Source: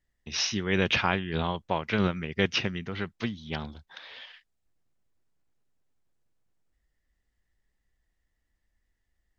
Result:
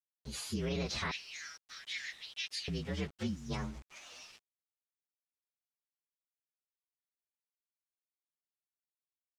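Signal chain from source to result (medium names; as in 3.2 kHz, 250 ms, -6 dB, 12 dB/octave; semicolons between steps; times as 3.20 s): frequency axis rescaled in octaves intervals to 121%; 1.11–2.68 s: elliptic high-pass 1.8 kHz, stop band 60 dB; bit crusher 9-bit; peak limiter -26.5 dBFS, peak gain reduction 11 dB; distance through air 61 m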